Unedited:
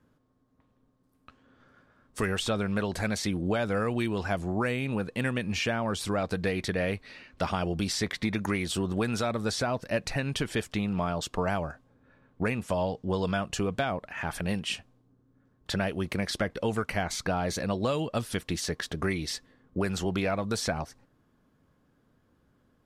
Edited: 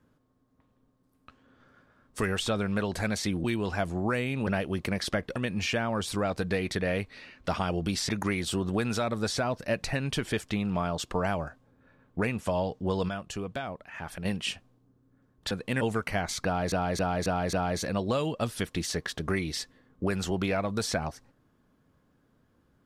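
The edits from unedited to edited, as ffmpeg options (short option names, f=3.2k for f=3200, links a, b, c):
-filter_complex "[0:a]asplit=13[a][b][c][d][e][f][g][h][i][j][k][l][m];[a]atrim=end=3.442[n];[b]atrim=start=3.958:end=4.992[o];[c]atrim=start=15.738:end=16.632[p];[d]atrim=start=5.288:end=8.022[q];[e]atrim=start=8.318:end=13.322[r];[f]atrim=start=13.318:end=14.482,asetpts=PTS-STARTPTS,volume=-6dB[s];[g]atrim=start=14.478:end=15.742[t];[h]atrim=start=4.988:end=5.292[u];[i]atrim=start=16.628:end=17.542[v];[j]atrim=start=17.268:end=17.542[w];[k]atrim=start=17.268:end=17.542[x];[l]atrim=start=17.268:end=17.542[y];[m]atrim=start=17.268[z];[n][o]acrossfade=d=0.004:c1=hsin:c2=hsin[aa];[aa][p]acrossfade=d=0.004:c1=hsin:c2=hsin[ab];[ab][q]acrossfade=d=0.004:c1=hsin:c2=hsin[ac];[ac][r]acrossfade=d=0.004:c1=hsin:c2=hsin[ad];[ad][s]acrossfade=d=0.004:c1=hsin:c2=hsin[ae];[ae][t]acrossfade=d=0.004:c1=hsin:c2=hsin[af];[af][u]acrossfade=d=0.004:c1=hsin:c2=hsin[ag];[ag][v]acrossfade=d=0.004:c1=hsin:c2=hsin[ah];[ah][w]acrossfade=d=0.004:c1=hsin:c2=hsin[ai];[ai][x]acrossfade=d=0.004:c1=hsin:c2=hsin[aj];[aj][y]acrossfade=d=0.004:c1=hsin:c2=hsin[ak];[ak][z]acrossfade=d=0.004:c1=hsin:c2=hsin"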